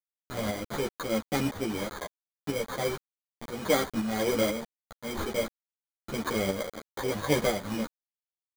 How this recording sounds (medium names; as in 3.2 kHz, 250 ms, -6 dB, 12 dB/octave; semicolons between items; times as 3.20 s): a quantiser's noise floor 6-bit, dither none; tremolo saw up 2 Hz, depth 50%; aliases and images of a low sample rate 2.7 kHz, jitter 0%; a shimmering, thickened sound